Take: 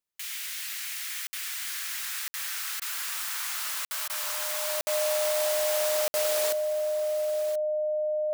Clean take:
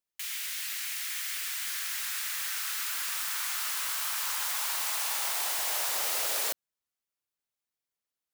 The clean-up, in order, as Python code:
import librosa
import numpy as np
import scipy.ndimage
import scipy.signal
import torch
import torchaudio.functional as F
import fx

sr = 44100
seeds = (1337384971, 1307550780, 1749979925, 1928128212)

y = fx.notch(x, sr, hz=610.0, q=30.0)
y = fx.fix_interpolate(y, sr, at_s=(1.27, 2.28, 3.85, 4.81, 6.08), length_ms=60.0)
y = fx.fix_interpolate(y, sr, at_s=(2.8, 4.08), length_ms=16.0)
y = fx.fix_echo_inverse(y, sr, delay_ms=1031, level_db=-13.0)